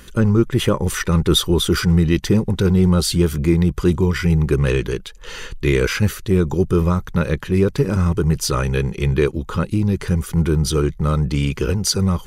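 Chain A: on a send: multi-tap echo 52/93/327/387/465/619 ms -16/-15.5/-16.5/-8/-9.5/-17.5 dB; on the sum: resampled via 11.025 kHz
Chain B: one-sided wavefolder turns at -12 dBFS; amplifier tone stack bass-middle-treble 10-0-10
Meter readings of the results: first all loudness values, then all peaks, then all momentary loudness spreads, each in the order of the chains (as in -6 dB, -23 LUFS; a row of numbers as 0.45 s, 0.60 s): -17.5 LUFS, -28.5 LUFS; -2.5 dBFS, -7.5 dBFS; 4 LU, 11 LU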